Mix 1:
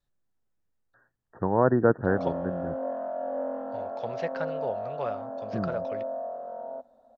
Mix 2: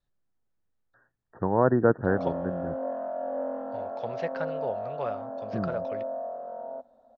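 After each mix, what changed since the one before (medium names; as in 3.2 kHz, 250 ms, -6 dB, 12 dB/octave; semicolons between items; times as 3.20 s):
master: add distance through air 51 m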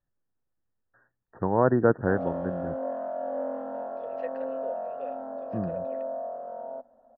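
second voice: add vowel filter e; master: remove distance through air 51 m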